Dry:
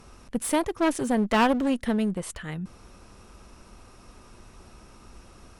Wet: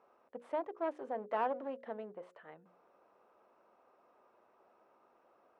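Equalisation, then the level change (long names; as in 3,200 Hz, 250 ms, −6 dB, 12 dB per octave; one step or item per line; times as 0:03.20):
four-pole ladder band-pass 720 Hz, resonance 30%
mains-hum notches 60/120/180/240/300/360/420/480/540 Hz
0.0 dB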